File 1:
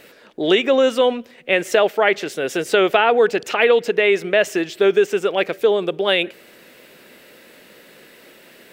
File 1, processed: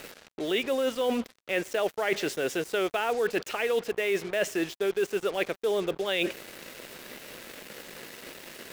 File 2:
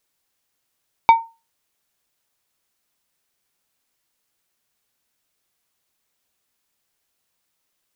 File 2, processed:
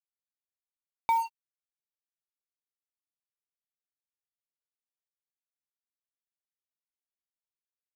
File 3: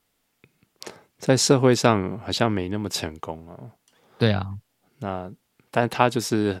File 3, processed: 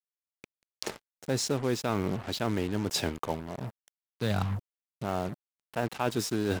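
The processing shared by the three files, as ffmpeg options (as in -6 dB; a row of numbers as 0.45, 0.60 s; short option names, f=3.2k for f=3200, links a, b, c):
-af "areverse,acompressor=threshold=-29dB:ratio=6,areverse,acrusher=bits=6:mix=0:aa=0.5,volume=3dB"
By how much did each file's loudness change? -11.0, -11.5, -9.5 LU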